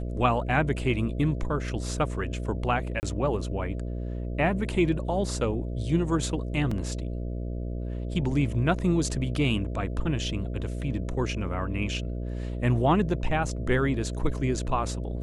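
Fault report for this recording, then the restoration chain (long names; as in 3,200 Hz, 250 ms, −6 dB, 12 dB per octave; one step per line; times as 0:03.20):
mains buzz 60 Hz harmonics 11 −32 dBFS
0:03.00–0:03.03: drop-out 29 ms
0:06.71: drop-out 4.3 ms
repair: hum removal 60 Hz, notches 11
repair the gap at 0:03.00, 29 ms
repair the gap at 0:06.71, 4.3 ms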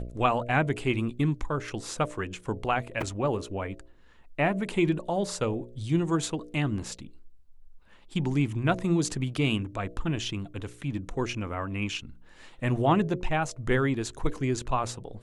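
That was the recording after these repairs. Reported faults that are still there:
none of them is left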